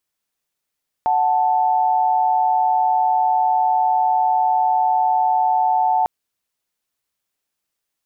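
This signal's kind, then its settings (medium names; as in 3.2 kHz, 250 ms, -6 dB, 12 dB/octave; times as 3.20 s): chord F#5/A5 sine, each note -17 dBFS 5.00 s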